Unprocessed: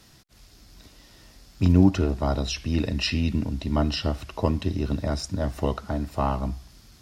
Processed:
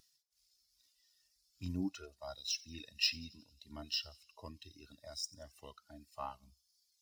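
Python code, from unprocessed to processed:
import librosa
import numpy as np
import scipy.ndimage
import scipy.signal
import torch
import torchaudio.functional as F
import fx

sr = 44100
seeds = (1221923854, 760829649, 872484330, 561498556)

p1 = scipy.signal.medfilt(x, 3)
p2 = fx.hpss(p1, sr, part='percussive', gain_db=-8)
p3 = fx.dereverb_blind(p2, sr, rt60_s=1.5)
p4 = scipy.signal.lfilter([1.0, -0.97], [1.0], p3)
p5 = p4 + fx.echo_wet_highpass(p4, sr, ms=90, feedback_pct=69, hz=3900.0, wet_db=-13.5, dry=0)
p6 = fx.spectral_expand(p5, sr, expansion=1.5)
y = F.gain(torch.from_numpy(p6), 6.5).numpy()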